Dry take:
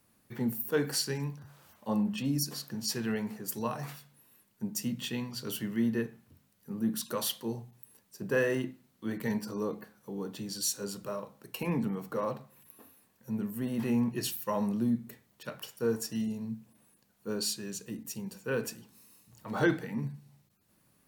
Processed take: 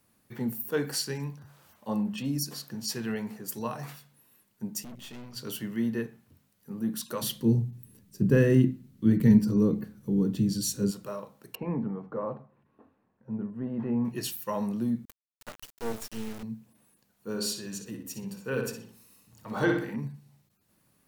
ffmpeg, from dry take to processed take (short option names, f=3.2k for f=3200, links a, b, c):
-filter_complex "[0:a]asplit=3[a][b][c];[a]afade=t=out:st=4.83:d=0.02[d];[b]aeval=exprs='(tanh(126*val(0)+0.75)-tanh(0.75))/126':c=same,afade=t=in:st=4.83:d=0.02,afade=t=out:st=5.35:d=0.02[e];[c]afade=t=in:st=5.35:d=0.02[f];[d][e][f]amix=inputs=3:normalize=0,asplit=3[g][h][i];[g]afade=t=out:st=7.21:d=0.02[j];[h]asubboost=boost=9.5:cutoff=250,afade=t=in:st=7.21:d=0.02,afade=t=out:st=10.9:d=0.02[k];[i]afade=t=in:st=10.9:d=0.02[l];[j][k][l]amix=inputs=3:normalize=0,asettb=1/sr,asplit=3[m][n][o];[m]atrim=end=11.554[p];[n]atrim=start=11.55:end=14.05,asetpts=PTS-STARTPTS,afade=t=in:d=0.004:c=qsin,afade=t=out:st=2.496:d=0.004:c=qsin,lowpass=1.2k[q];[o]atrim=start=14.046[r];[p][q]acrossfade=d=0.004:c1=hsin:c2=qsin[s];[s][r]acrossfade=d=0.004:c1=qsin:c2=hsin,asettb=1/sr,asplit=3[t][u][v];[t]atrim=end=15.054[w];[u]atrim=start=15.05:end=16.43,asetpts=PTS-STARTPTS,afade=t=in:d=0.004:c=qsin,afade=t=out:st=1.376:d=0.004:c=qsin,acrusher=bits=4:dc=4:mix=0:aa=0.000001[x];[v]atrim=start=16.426[y];[w][x]acrossfade=d=0.004:c1=hsin:c2=qsin[z];[z][y]acrossfade=d=0.004:c1=qsin:c2=hsin,asettb=1/sr,asplit=3[aa][ab][ac];[aa]atrim=end=17.284[ad];[ab]atrim=start=17.28:end=19.96,asetpts=PTS-STARTPTS,afade=t=in:d=0.004:c=qsin,afade=t=out:st=2.676:d=0.004:c=qsin,asplit=2[ae][af];[af]adelay=61,lowpass=f=3.8k:p=1,volume=-4dB,asplit=2[ag][ah];[ah]adelay=61,lowpass=f=3.8k:p=1,volume=0.44,asplit=2[ai][aj];[aj]adelay=61,lowpass=f=3.8k:p=1,volume=0.44,asplit=2[ak][al];[al]adelay=61,lowpass=f=3.8k:p=1,volume=0.44,asplit=2[am][an];[an]adelay=61,lowpass=f=3.8k:p=1,volume=0.44,asplit=2[ao][ap];[ap]adelay=61,lowpass=f=3.8k:p=1,volume=0.44[aq];[ae][ag][ai][ak][am][ao][aq]amix=inputs=7:normalize=0,atrim=end_sample=118188[ar];[ac]atrim=start=19.956[as];[ad][ar]acrossfade=d=0.004:c1=hsin:c2=qsin[at];[at][as]acrossfade=d=0.004:c1=qsin:c2=hsin"